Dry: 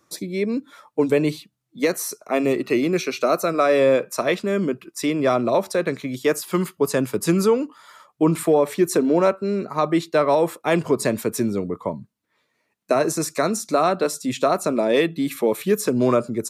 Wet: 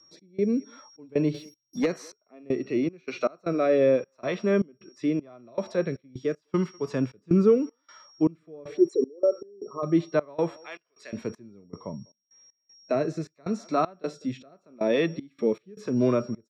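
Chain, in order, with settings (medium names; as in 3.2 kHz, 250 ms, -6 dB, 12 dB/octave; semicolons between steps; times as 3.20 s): 8.77–9.83 s: resonances exaggerated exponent 3; 10.56–11.13 s: high-pass 1.4 kHz 12 dB/octave; speakerphone echo 200 ms, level -27 dB; harmonic-percussive split harmonic +9 dB; distance through air 170 m; whistle 5.6 kHz -43 dBFS; 1.34–1.86 s: waveshaping leveller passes 2; rotary cabinet horn 0.85 Hz; trance gate "x.xxx.xx.xx..xx." 78 bpm -24 dB; trim -8.5 dB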